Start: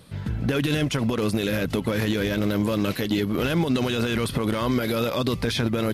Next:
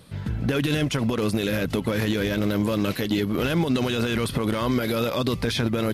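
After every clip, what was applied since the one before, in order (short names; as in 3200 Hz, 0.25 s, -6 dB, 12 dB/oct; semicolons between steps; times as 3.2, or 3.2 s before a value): nothing audible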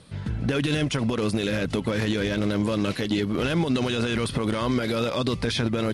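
elliptic low-pass 10000 Hz, stop band 70 dB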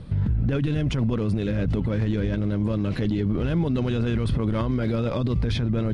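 RIAA curve playback; in parallel at +1 dB: negative-ratio compressor -21 dBFS, ratio -0.5; on the sum: limiter -9 dBFS, peak gain reduction 7.5 dB; gain -7 dB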